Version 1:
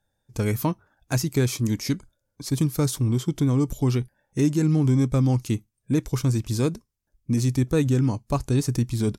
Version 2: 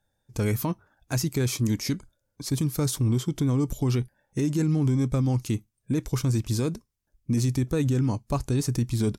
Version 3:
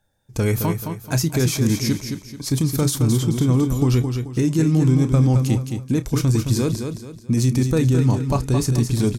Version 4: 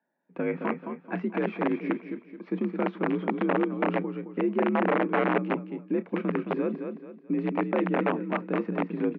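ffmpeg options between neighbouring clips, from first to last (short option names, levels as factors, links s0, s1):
-af "alimiter=limit=0.141:level=0:latency=1:release=26"
-filter_complex "[0:a]asplit=2[s0][s1];[s1]adelay=31,volume=0.2[s2];[s0][s2]amix=inputs=2:normalize=0,asplit=2[s3][s4];[s4]aecho=0:1:217|434|651|868:0.473|0.166|0.058|0.0203[s5];[s3][s5]amix=inputs=2:normalize=0,volume=1.88"
-af "aeval=exprs='(mod(3.35*val(0)+1,2)-1)/3.35':c=same,highpass=f=160:t=q:w=0.5412,highpass=f=160:t=q:w=1.307,lowpass=f=2400:t=q:w=0.5176,lowpass=f=2400:t=q:w=0.7071,lowpass=f=2400:t=q:w=1.932,afreqshift=53,volume=0.501"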